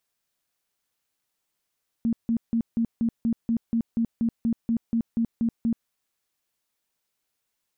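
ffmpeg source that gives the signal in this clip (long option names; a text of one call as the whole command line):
ffmpeg -f lavfi -i "aevalsrc='0.1*sin(2*PI*230*mod(t,0.24))*lt(mod(t,0.24),18/230)':duration=3.84:sample_rate=44100" out.wav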